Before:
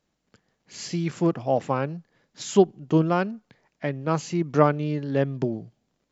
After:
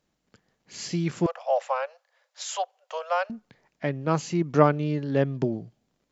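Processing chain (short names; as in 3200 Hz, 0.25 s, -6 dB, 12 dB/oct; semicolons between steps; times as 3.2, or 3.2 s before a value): 1.26–3.3 steep high-pass 510 Hz 96 dB/oct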